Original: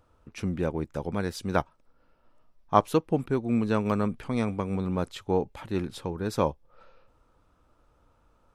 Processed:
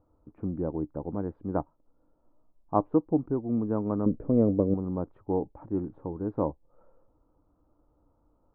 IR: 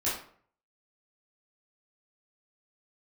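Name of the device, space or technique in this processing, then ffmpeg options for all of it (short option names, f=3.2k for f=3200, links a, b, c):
under water: -filter_complex "[0:a]asettb=1/sr,asplit=3[a][b][c];[a]atrim=end=4.064[d];[b]atrim=start=4.06:end=4.74,asetpts=PTS-STARTPTS,afade=t=in:d=0.004:c=qsin,afade=t=out:st=0.676:d=0.004:c=qsin,lowshelf=f=680:t=q:w=3:g=6.5[e];[c]atrim=start=4.736[f];[d][e]acrossfade=d=0.004:c1=hsin:c2=qsin[g];[g][f]acrossfade=d=0.004:c1=qsin:c2=hsin,lowpass=f=1k:w=0.5412,lowpass=f=1k:w=1.3066,equalizer=f=300:t=o:w=0.22:g=10,volume=-3.5dB"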